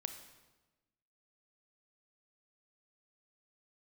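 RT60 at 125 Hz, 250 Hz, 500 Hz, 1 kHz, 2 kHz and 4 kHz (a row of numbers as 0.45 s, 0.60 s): 1.3 s, 1.4 s, 1.2 s, 1.1 s, 1.0 s, 0.95 s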